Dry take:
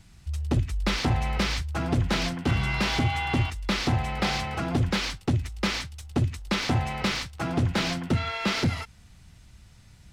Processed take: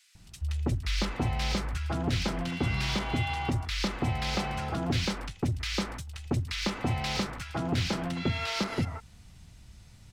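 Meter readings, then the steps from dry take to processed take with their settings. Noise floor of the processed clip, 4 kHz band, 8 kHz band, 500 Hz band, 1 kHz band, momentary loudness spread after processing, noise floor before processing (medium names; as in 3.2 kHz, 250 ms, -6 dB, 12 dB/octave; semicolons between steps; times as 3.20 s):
-54 dBFS, -3.5 dB, -3.0 dB, -3.0 dB, -4.0 dB, 4 LU, -53 dBFS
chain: compression 2.5:1, threshold -27 dBFS, peak gain reduction 6 dB; bands offset in time highs, lows 150 ms, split 1.6 kHz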